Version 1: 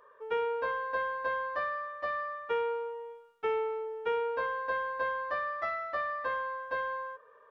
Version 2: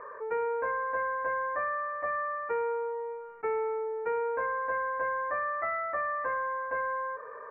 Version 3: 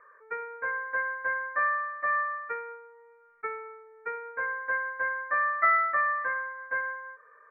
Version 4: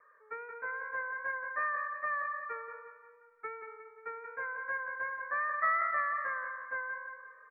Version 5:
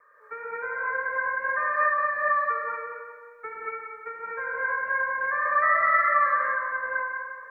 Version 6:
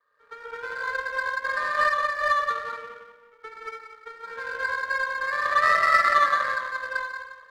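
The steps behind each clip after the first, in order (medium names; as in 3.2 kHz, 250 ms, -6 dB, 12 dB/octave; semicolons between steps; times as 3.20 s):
elliptic low-pass 2.2 kHz, stop band 40 dB; level flattener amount 50%
high-order bell 1.7 kHz +12.5 dB 1.2 oct; upward expansion 2.5:1, over -32 dBFS
vibrato 2.6 Hz 43 cents; on a send: feedback delay 177 ms, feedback 46%, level -7 dB; on the sum: trim -7 dB
gated-style reverb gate 260 ms rising, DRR -5.5 dB; trim +3.5 dB
pre-echo 116 ms -15 dB; power-law waveshaper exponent 1.4; trim +4.5 dB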